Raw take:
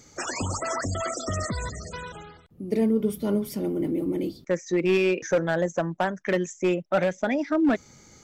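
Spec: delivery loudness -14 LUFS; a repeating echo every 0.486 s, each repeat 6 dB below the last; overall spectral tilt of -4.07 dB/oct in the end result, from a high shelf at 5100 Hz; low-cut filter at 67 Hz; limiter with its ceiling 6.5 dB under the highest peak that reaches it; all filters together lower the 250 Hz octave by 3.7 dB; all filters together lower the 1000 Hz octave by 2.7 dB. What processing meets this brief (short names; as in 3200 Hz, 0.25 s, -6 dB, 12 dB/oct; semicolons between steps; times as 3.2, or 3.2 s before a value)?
HPF 67 Hz; bell 250 Hz -5 dB; bell 1000 Hz -4 dB; high shelf 5100 Hz +7.5 dB; limiter -20.5 dBFS; feedback echo 0.486 s, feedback 50%, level -6 dB; gain +15.5 dB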